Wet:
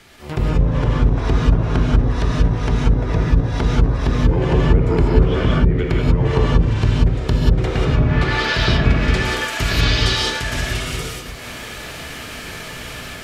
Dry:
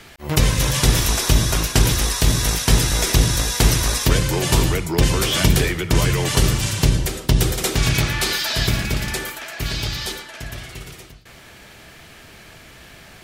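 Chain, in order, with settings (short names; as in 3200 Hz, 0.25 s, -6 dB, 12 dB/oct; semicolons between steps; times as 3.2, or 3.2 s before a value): treble ducked by the level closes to 330 Hz, closed at -11.5 dBFS; AGC; non-linear reverb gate 0.21 s rising, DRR -3.5 dB; gain -4.5 dB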